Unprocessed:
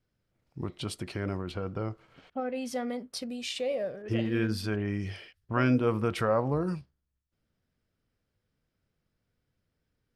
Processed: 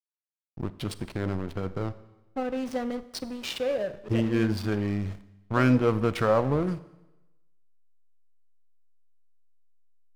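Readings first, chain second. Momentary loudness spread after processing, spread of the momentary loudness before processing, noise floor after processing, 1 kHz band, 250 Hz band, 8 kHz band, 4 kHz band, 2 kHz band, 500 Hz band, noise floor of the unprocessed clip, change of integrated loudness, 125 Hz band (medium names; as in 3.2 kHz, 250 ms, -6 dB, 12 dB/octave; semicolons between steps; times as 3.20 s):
14 LU, 14 LU, under -85 dBFS, +3.0 dB, +3.5 dB, -1.0 dB, +0.5 dB, +2.0 dB, +3.0 dB, -82 dBFS, +3.0 dB, +3.5 dB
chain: hysteresis with a dead band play -33 dBFS; Schroeder reverb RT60 1 s, combs from 31 ms, DRR 15 dB; trim +4 dB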